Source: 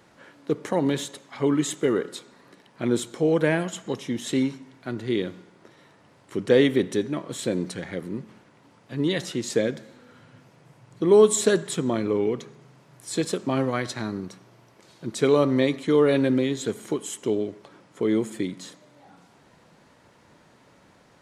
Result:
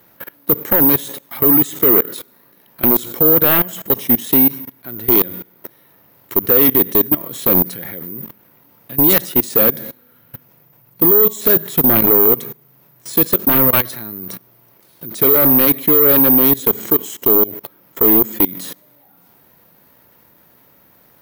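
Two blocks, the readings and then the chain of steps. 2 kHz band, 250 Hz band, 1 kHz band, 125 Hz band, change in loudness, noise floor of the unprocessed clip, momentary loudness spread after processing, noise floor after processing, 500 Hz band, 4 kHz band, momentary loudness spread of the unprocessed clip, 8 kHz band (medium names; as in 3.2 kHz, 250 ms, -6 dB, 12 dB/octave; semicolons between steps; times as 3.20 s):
+5.5 dB, +5.5 dB, +9.0 dB, +4.5 dB, +13.0 dB, -57 dBFS, 18 LU, -52 dBFS, +3.5 dB, +4.5 dB, 16 LU, +2.5 dB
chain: careless resampling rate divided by 3×, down filtered, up zero stuff; level held to a coarse grid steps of 22 dB; sine folder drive 11 dB, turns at -3.5 dBFS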